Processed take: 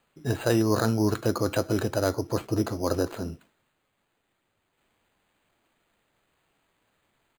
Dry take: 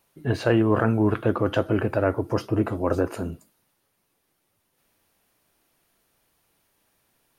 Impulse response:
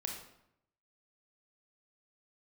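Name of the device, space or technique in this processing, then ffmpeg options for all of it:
crushed at another speed: -af "asetrate=35280,aresample=44100,acrusher=samples=10:mix=1:aa=0.000001,asetrate=55125,aresample=44100,volume=-3dB"

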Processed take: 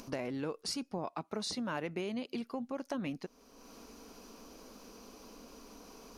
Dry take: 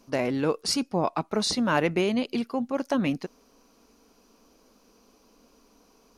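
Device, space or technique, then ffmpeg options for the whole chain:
upward and downward compression: -filter_complex "[0:a]acompressor=mode=upward:threshold=-44dB:ratio=2.5,acompressor=threshold=-39dB:ratio=3,asettb=1/sr,asplit=3[link_01][link_02][link_03];[link_01]atrim=end=0.984[link_04];[link_02]atrim=start=0.98:end=2.41,asetpts=PTS-STARTPTS,afade=type=in:duration=0.004:curve=qsin,afade=type=out:start_time=1.426:duration=0.004:curve=qsin,highpass=60[link_05];[link_03]atrim=start=2.406[link_06];[link_04][link_05]acrossfade=duration=0.004:curve1=hsin:curve2=qsin[link_07];[link_07][link_06]acrossfade=duration=0.004:curve1=qsin:curve2=hsin"

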